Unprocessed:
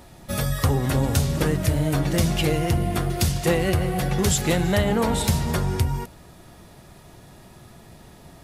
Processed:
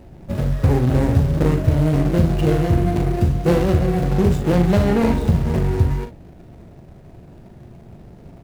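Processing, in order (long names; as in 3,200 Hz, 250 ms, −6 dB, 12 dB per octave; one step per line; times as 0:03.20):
running median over 41 samples
ambience of single reflections 40 ms −8 dB, 57 ms −13.5 dB
level +5.5 dB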